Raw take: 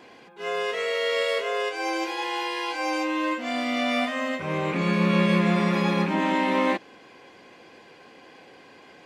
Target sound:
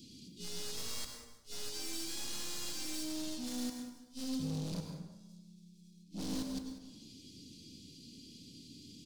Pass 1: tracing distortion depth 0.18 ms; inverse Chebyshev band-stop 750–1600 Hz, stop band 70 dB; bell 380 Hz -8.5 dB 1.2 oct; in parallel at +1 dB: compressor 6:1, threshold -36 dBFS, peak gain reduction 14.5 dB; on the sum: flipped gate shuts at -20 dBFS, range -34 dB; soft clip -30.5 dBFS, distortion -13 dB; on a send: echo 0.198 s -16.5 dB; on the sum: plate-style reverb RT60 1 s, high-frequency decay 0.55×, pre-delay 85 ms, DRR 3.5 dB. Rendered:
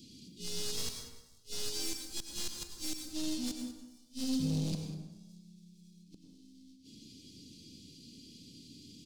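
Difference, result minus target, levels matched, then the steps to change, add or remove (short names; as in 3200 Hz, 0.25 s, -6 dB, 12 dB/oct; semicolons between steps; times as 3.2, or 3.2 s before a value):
compressor: peak gain reduction -6.5 dB; soft clip: distortion -5 dB
change: compressor 6:1, threshold -44 dBFS, peak gain reduction 21 dB; change: soft clip -37.5 dBFS, distortion -8 dB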